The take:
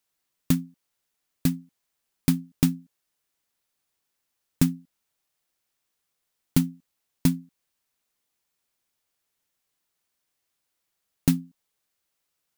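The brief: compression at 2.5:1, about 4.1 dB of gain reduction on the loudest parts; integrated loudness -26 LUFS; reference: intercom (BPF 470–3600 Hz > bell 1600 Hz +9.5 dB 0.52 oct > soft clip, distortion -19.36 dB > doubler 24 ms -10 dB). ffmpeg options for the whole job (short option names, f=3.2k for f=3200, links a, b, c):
-filter_complex "[0:a]acompressor=threshold=-22dB:ratio=2.5,highpass=470,lowpass=3.6k,equalizer=f=1.6k:t=o:w=0.52:g=9.5,asoftclip=threshold=-19.5dB,asplit=2[a][b];[b]adelay=24,volume=-10dB[c];[a][c]amix=inputs=2:normalize=0,volume=16.5dB"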